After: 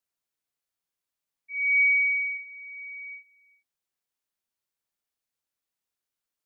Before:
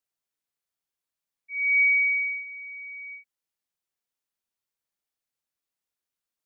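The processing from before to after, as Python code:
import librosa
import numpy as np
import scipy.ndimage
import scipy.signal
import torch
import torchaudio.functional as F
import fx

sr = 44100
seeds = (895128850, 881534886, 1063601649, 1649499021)

y = fx.cheby1_highpass(x, sr, hz=2100.0, order=2, at=(1.52, 2.37), fade=0.02)
y = y + 10.0 ** (-22.5 / 20.0) * np.pad(y, (int(395 * sr / 1000.0), 0))[:len(y)]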